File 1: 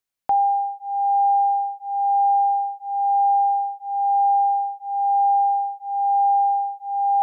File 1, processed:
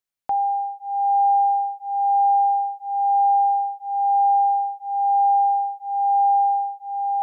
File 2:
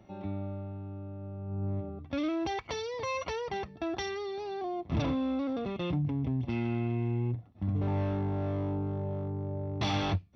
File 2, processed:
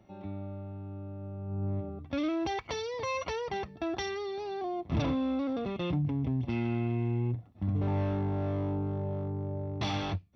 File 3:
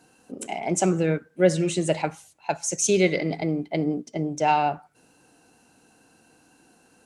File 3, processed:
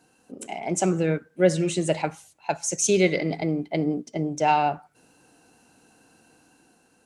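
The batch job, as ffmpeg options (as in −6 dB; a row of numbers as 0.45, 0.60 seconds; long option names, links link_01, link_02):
-af "dynaudnorm=framelen=160:gausssize=9:maxgain=4dB,volume=-3.5dB"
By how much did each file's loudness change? 0.0, +0.5, 0.0 LU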